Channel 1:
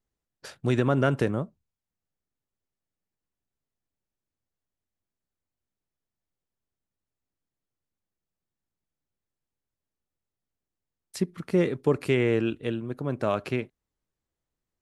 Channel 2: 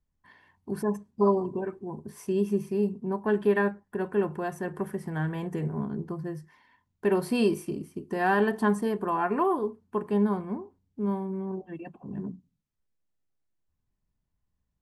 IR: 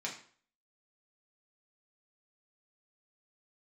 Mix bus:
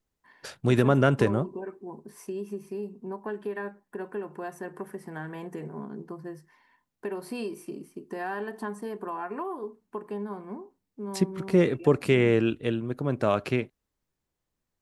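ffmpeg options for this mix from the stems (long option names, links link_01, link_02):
-filter_complex "[0:a]volume=2dB[link_01];[1:a]highpass=240,equalizer=frequency=3300:width=6.6:gain=-4,acompressor=threshold=-31dB:ratio=3,volume=-1.5dB[link_02];[link_01][link_02]amix=inputs=2:normalize=0"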